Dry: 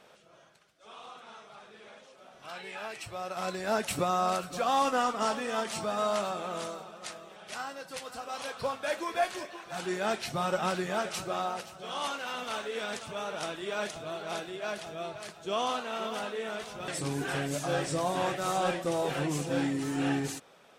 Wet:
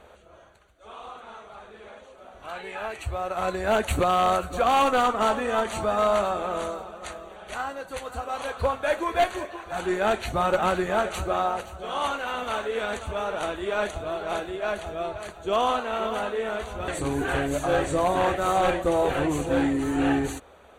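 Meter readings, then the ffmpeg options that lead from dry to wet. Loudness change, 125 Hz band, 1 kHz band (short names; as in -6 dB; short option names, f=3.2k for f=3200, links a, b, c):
+6.5 dB, +4.5 dB, +7.0 dB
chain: -filter_complex "[0:a]asplit=2[a][b];[b]adynamicsmooth=sensitivity=2:basefreq=2.1k,volume=2dB[c];[a][c]amix=inputs=2:normalize=0,lowshelf=f=100:t=q:w=3:g=12,aeval=exprs='0.168*(abs(mod(val(0)/0.168+3,4)-2)-1)':c=same,asuperstop=centerf=5200:order=4:qfactor=4,volume=1.5dB"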